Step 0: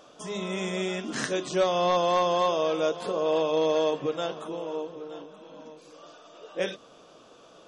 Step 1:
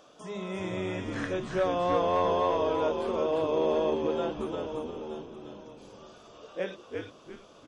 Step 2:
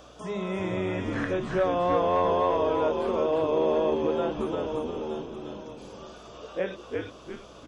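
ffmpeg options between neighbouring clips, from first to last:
ffmpeg -i in.wav -filter_complex "[0:a]acrossover=split=2600[link_01][link_02];[link_02]acompressor=threshold=-50dB:ratio=4:attack=1:release=60[link_03];[link_01][link_03]amix=inputs=2:normalize=0,asplit=2[link_04][link_05];[link_05]asplit=4[link_06][link_07][link_08][link_09];[link_06]adelay=349,afreqshift=-86,volume=-3.5dB[link_10];[link_07]adelay=698,afreqshift=-172,volume=-13.4dB[link_11];[link_08]adelay=1047,afreqshift=-258,volume=-23.3dB[link_12];[link_09]adelay=1396,afreqshift=-344,volume=-33.2dB[link_13];[link_10][link_11][link_12][link_13]amix=inputs=4:normalize=0[link_14];[link_04][link_14]amix=inputs=2:normalize=0,volume=-3.5dB" out.wav
ffmpeg -i in.wav -filter_complex "[0:a]asplit=2[link_01][link_02];[link_02]acompressor=threshold=-34dB:ratio=6,volume=0dB[link_03];[link_01][link_03]amix=inputs=2:normalize=0,aeval=exprs='val(0)+0.00141*(sin(2*PI*60*n/s)+sin(2*PI*2*60*n/s)/2+sin(2*PI*3*60*n/s)/3+sin(2*PI*4*60*n/s)/4+sin(2*PI*5*60*n/s)/5)':channel_layout=same,acrossover=split=2900[link_04][link_05];[link_05]acompressor=threshold=-51dB:ratio=4:attack=1:release=60[link_06];[link_04][link_06]amix=inputs=2:normalize=0" out.wav

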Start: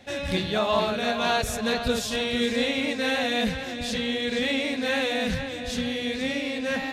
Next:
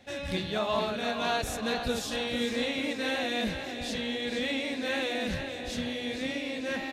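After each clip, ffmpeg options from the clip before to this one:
ffmpeg -i in.wav -filter_complex "[0:a]asplit=6[link_01][link_02][link_03][link_04][link_05][link_06];[link_02]adelay=443,afreqshift=58,volume=-12dB[link_07];[link_03]adelay=886,afreqshift=116,volume=-18.4dB[link_08];[link_04]adelay=1329,afreqshift=174,volume=-24.8dB[link_09];[link_05]adelay=1772,afreqshift=232,volume=-31.1dB[link_10];[link_06]adelay=2215,afreqshift=290,volume=-37.5dB[link_11];[link_01][link_07][link_08][link_09][link_10][link_11]amix=inputs=6:normalize=0,volume=-5.5dB" out.wav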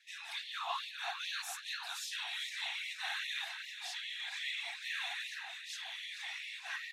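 ffmpeg -i in.wav -af "afftfilt=real='hypot(re,im)*cos(2*PI*random(0))':imag='hypot(re,im)*sin(2*PI*random(1))':win_size=512:overlap=0.75,afftfilt=real='re*gte(b*sr/1024,650*pow(1800/650,0.5+0.5*sin(2*PI*2.5*pts/sr)))':imag='im*gte(b*sr/1024,650*pow(1800/650,0.5+0.5*sin(2*PI*2.5*pts/sr)))':win_size=1024:overlap=0.75,volume=1dB" out.wav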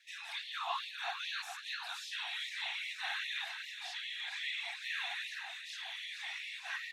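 ffmpeg -i in.wav -filter_complex "[0:a]acrossover=split=4500[link_01][link_02];[link_02]acompressor=threshold=-55dB:ratio=4:attack=1:release=60[link_03];[link_01][link_03]amix=inputs=2:normalize=0,volume=1dB" out.wav

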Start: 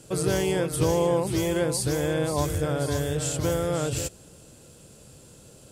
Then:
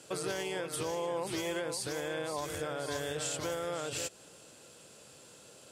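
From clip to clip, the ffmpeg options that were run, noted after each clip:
ffmpeg -i in.wav -af "highpass=frequency=920:poles=1,highshelf=frequency=7300:gain=-11.5,alimiter=level_in=4.5dB:limit=-24dB:level=0:latency=1:release=159,volume=-4.5dB,volume=3dB" out.wav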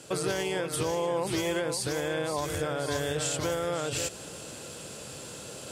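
ffmpeg -i in.wav -af "lowshelf=frequency=170:gain=7,areverse,acompressor=mode=upward:threshold=-38dB:ratio=2.5,areverse,volume=5dB" out.wav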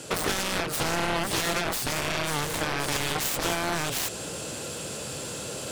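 ffmpeg -i in.wav -af "aeval=exprs='0.126*(cos(1*acos(clip(val(0)/0.126,-1,1)))-cos(1*PI/2))+0.0631*(cos(7*acos(clip(val(0)/0.126,-1,1)))-cos(7*PI/2))':channel_layout=same" out.wav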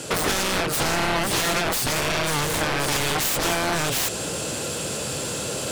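ffmpeg -i in.wav -af "asoftclip=type=tanh:threshold=-22dB,volume=7dB" out.wav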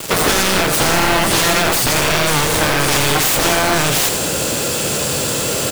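ffmpeg -i in.wav -af "acrusher=bits=4:mix=0:aa=0.000001,aecho=1:1:84:0.422,volume=7.5dB" out.wav

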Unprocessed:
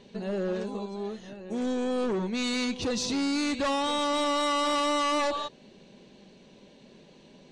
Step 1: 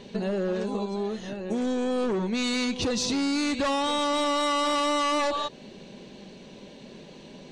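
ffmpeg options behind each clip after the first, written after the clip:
ffmpeg -i in.wav -af "acompressor=threshold=-33dB:ratio=6,volume=8dB" out.wav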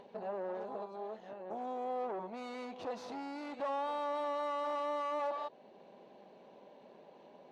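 ffmpeg -i in.wav -af "aeval=exprs='(tanh(25.1*val(0)+0.7)-tanh(0.7))/25.1':channel_layout=same,bandpass=frequency=760:width_type=q:width=2:csg=0,acompressor=mode=upward:threshold=-52dB:ratio=2.5" out.wav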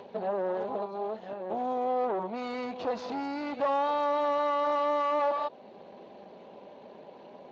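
ffmpeg -i in.wav -af "volume=8.5dB" -ar 16000 -c:a libspeex -b:a 21k out.spx

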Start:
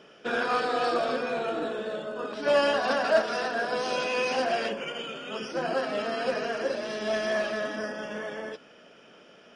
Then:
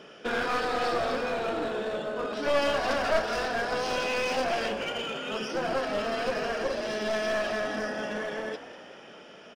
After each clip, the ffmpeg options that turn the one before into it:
ffmpeg -i in.wav -filter_complex "[0:a]asplit=2[link_01][link_02];[link_02]acompressor=threshold=-35dB:ratio=6,volume=0.5dB[link_03];[link_01][link_03]amix=inputs=2:normalize=0,aeval=exprs='clip(val(0),-1,0.0447)':channel_layout=same,asplit=8[link_04][link_05][link_06][link_07][link_08][link_09][link_10][link_11];[link_05]adelay=193,afreqshift=46,volume=-14.5dB[link_12];[link_06]adelay=386,afreqshift=92,volume=-18.5dB[link_13];[link_07]adelay=579,afreqshift=138,volume=-22.5dB[link_14];[link_08]adelay=772,afreqshift=184,volume=-26.5dB[link_15];[link_09]adelay=965,afreqshift=230,volume=-30.6dB[link_16];[link_10]adelay=1158,afreqshift=276,volume=-34.6dB[link_17];[link_11]adelay=1351,afreqshift=322,volume=-38.6dB[link_18];[link_04][link_12][link_13][link_14][link_15][link_16][link_17][link_18]amix=inputs=8:normalize=0,volume=-2dB" out.wav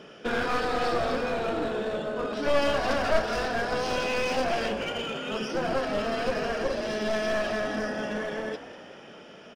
ffmpeg -i in.wav -af "lowshelf=frequency=240:gain=7" out.wav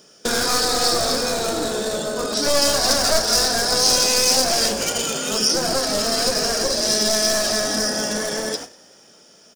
ffmpeg -i in.wav -filter_complex "[0:a]agate=range=-16dB:threshold=-40dB:ratio=16:detection=peak,asplit=2[link_01][link_02];[link_02]acompressor=threshold=-35dB:ratio=6,volume=2.5dB[link_03];[link_01][link_03]amix=inputs=2:normalize=0,aexciter=amount=13.1:drive=4.7:freq=4300,volume=1.5dB" out.wav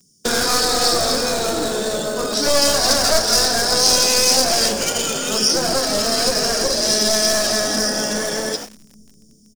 ffmpeg -i in.wav -filter_complex "[0:a]acrossover=split=240|6400[link_01][link_02][link_03];[link_01]aecho=1:1:841|1682|2523|3364:0.141|0.065|0.0299|0.0137[link_04];[link_02]acrusher=bits=6:mix=0:aa=0.000001[link_05];[link_04][link_05][link_03]amix=inputs=3:normalize=0,volume=2dB" out.wav

